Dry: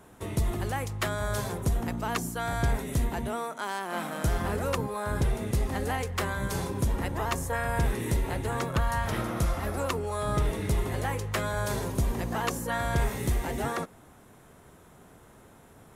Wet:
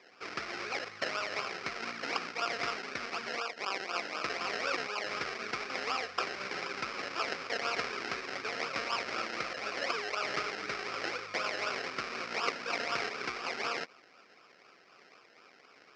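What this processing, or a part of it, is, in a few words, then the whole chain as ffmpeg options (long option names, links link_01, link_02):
circuit-bent sampling toy: -af "acrusher=samples=30:mix=1:aa=0.000001:lfo=1:lforange=18:lforate=4,highpass=590,equalizer=frequency=620:width_type=q:width=4:gain=-4,equalizer=frequency=900:width_type=q:width=4:gain=-9,equalizer=frequency=1300:width_type=q:width=4:gain=7,equalizer=frequency=2300:width_type=q:width=4:gain=8,equalizer=frequency=3400:width_type=q:width=4:gain=-5,equalizer=frequency=5200:width_type=q:width=4:gain=9,lowpass=frequency=5300:width=0.5412,lowpass=frequency=5300:width=1.3066"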